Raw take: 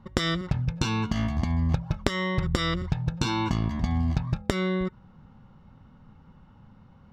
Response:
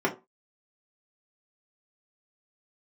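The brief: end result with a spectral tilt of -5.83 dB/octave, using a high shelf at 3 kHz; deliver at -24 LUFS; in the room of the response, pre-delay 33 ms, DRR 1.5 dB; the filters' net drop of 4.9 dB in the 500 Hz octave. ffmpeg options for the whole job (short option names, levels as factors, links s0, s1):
-filter_complex "[0:a]equalizer=f=500:t=o:g=-7,highshelf=f=3000:g=-5.5,asplit=2[s0][s1];[1:a]atrim=start_sample=2205,adelay=33[s2];[s1][s2]afir=irnorm=-1:irlink=0,volume=0.2[s3];[s0][s3]amix=inputs=2:normalize=0,volume=1.33"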